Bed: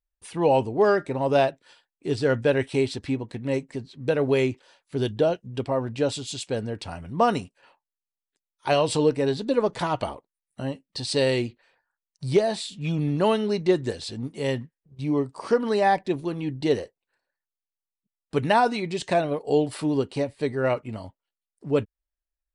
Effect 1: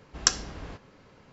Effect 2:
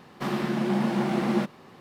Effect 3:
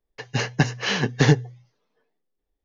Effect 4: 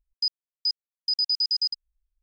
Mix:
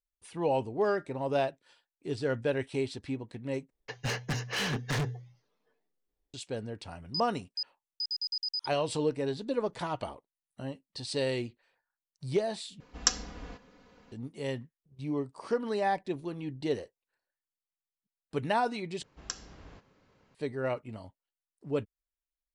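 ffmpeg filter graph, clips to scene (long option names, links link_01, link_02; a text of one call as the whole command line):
ffmpeg -i bed.wav -i cue0.wav -i cue1.wav -i cue2.wav -i cue3.wav -filter_complex "[1:a]asplit=2[link_01][link_02];[0:a]volume=-8.5dB[link_03];[3:a]volume=23.5dB,asoftclip=hard,volume=-23.5dB[link_04];[link_01]aecho=1:1:4.1:0.67[link_05];[link_02]alimiter=limit=-7dB:level=0:latency=1:release=244[link_06];[link_03]asplit=4[link_07][link_08][link_09][link_10];[link_07]atrim=end=3.704[link_11];[link_04]atrim=end=2.64,asetpts=PTS-STARTPTS,volume=-4.5dB[link_12];[link_08]atrim=start=6.336:end=12.804[link_13];[link_05]atrim=end=1.32,asetpts=PTS-STARTPTS,volume=-5dB[link_14];[link_09]atrim=start=14.116:end=19.034[link_15];[link_06]atrim=end=1.32,asetpts=PTS-STARTPTS,volume=-10.5dB[link_16];[link_10]atrim=start=20.346[link_17];[4:a]atrim=end=2.22,asetpts=PTS-STARTPTS,volume=-9.5dB,afade=type=in:duration=0.004:curve=hsin,afade=type=out:start_time=2.216:duration=0.004:curve=hsin,adelay=6920[link_18];[link_11][link_12]acrossfade=duration=0.004:curve1=hsin:curve2=hsin[link_19];[link_19][link_13]acrossfade=duration=0.004:curve1=hsin:curve2=hsin[link_20];[link_20][link_14]acrossfade=duration=0.004:curve1=hsin:curve2=hsin[link_21];[link_21][link_15]acrossfade=duration=0.004:curve1=hsin:curve2=hsin[link_22];[link_22][link_16]acrossfade=duration=0.004:curve1=hsin:curve2=hsin[link_23];[link_23][link_17]acrossfade=duration=0.004:curve1=hsin:curve2=hsin[link_24];[link_24][link_18]amix=inputs=2:normalize=0" out.wav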